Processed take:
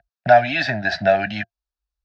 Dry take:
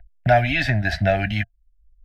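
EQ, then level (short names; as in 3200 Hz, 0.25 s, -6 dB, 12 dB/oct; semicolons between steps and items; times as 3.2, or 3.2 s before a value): speaker cabinet 270–5400 Hz, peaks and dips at 280 Hz -5 dB, 470 Hz -4 dB, 2100 Hz -10 dB, 3100 Hz -7 dB; notch 360 Hz, Q 12; +5.5 dB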